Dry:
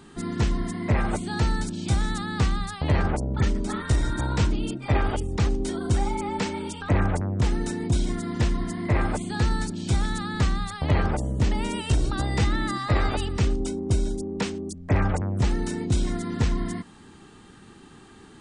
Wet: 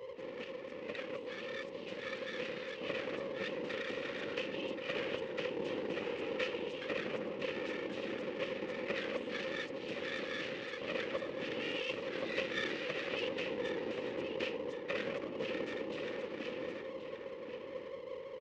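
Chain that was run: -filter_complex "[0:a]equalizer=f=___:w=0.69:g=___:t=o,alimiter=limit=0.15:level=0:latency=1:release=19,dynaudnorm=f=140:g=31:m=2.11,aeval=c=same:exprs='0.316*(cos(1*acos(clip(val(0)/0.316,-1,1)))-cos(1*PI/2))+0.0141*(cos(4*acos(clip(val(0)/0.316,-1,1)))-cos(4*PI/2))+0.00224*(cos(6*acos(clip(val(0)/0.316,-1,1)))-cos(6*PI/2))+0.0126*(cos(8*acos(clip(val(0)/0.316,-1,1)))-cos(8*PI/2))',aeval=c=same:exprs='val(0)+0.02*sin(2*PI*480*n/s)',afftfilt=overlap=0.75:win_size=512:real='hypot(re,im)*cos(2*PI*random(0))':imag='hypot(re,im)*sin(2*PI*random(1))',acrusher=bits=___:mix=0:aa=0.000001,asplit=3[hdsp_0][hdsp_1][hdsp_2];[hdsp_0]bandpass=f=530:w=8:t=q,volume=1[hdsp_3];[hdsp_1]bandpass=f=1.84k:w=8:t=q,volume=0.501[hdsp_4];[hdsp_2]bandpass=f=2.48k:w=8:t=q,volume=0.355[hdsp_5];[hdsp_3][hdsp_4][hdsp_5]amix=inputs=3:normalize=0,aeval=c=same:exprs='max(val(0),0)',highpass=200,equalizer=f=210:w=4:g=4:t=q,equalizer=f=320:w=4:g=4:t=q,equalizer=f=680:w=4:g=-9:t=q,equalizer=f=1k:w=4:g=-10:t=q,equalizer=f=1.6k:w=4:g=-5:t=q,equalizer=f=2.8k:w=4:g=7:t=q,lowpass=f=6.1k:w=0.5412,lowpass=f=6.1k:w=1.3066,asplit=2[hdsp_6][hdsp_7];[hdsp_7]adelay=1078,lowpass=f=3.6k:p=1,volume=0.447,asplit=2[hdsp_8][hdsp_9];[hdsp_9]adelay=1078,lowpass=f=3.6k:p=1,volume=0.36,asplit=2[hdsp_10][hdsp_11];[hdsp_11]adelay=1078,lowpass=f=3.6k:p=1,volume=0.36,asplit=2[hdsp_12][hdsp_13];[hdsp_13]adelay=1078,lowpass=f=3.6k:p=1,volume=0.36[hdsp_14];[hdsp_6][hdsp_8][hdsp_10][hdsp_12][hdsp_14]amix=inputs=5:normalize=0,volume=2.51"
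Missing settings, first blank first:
1.5k, 4, 11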